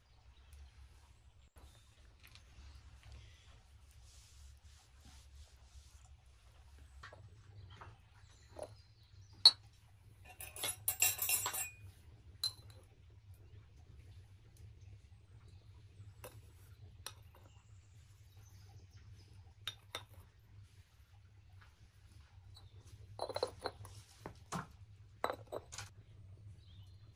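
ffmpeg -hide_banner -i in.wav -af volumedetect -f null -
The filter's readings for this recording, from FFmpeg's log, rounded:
mean_volume: -45.8 dB
max_volume: -9.3 dB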